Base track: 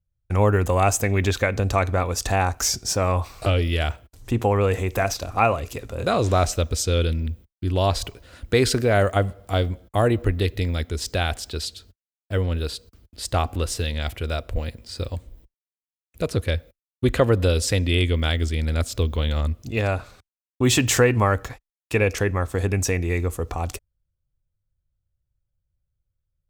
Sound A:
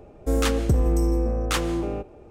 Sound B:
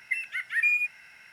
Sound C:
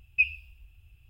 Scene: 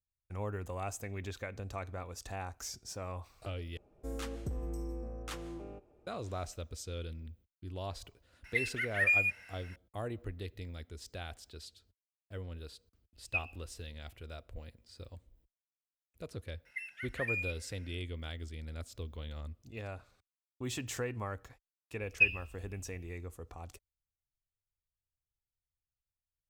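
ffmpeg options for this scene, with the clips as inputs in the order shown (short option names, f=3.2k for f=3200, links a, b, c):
-filter_complex "[2:a]asplit=2[a][b];[3:a]asplit=2[c][d];[0:a]volume=-20dB[e];[b]bandreject=f=1.1k:w=13[f];[e]asplit=2[g][h];[g]atrim=end=3.774[i];[1:a]atrim=end=2.3,asetpts=PTS-STARTPTS,volume=-18dB[j];[h]atrim=start=6.066[k];[a]atrim=end=1.32,asetpts=PTS-STARTPTS,volume=-3.5dB,afade=t=in:d=0.004:c=hsin,afade=t=out:st=1.316:d=0.004:c=hsin,adelay=8440[l];[c]atrim=end=1.09,asetpts=PTS-STARTPTS,volume=-11dB,afade=t=in:d=0.004:c=hsin,afade=t=out:st=1.086:d=0.004:c=hsin,adelay=13150[m];[f]atrim=end=1.32,asetpts=PTS-STARTPTS,volume=-12dB,afade=t=in:d=0.004:c=hsin,afade=t=out:st=1.316:d=0.004:c=hsin,adelay=16650[n];[d]atrim=end=1.09,asetpts=PTS-STARTPTS,volume=-2dB,afade=t=in:d=0.004:c=hsin,afade=t=out:st=1.086:d=0.004:c=hsin,adelay=22020[o];[i][j]acrossfade=d=0.004:c1=hsin:c2=hsin[p];[p][k]acrossfade=d=0.004:c1=hsin:c2=hsin[q];[q][l][m][n][o]amix=inputs=5:normalize=0"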